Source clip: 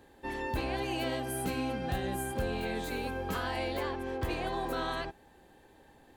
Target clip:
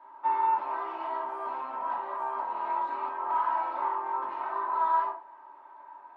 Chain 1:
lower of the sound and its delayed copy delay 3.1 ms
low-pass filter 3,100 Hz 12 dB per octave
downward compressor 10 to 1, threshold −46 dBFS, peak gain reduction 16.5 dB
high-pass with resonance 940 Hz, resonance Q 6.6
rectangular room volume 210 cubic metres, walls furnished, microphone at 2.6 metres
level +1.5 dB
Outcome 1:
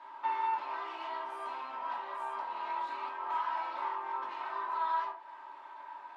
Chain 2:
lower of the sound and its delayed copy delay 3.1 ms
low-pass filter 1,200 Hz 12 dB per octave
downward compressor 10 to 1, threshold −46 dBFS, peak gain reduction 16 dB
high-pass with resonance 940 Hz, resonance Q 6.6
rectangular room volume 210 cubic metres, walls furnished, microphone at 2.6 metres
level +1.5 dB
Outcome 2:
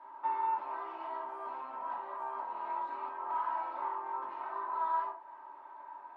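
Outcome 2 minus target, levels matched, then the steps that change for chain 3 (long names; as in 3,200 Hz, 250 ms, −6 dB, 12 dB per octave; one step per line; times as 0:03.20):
downward compressor: peak gain reduction +6.5 dB
change: downward compressor 10 to 1, threshold −38.5 dBFS, peak gain reduction 9.5 dB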